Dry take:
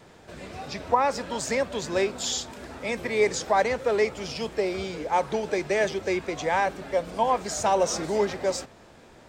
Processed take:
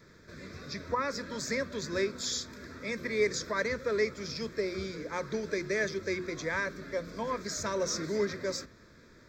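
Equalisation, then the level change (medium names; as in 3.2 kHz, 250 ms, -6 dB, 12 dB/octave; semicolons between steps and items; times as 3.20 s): hum notches 60/120/180/240/300/360 Hz; static phaser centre 2.9 kHz, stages 6; -2.0 dB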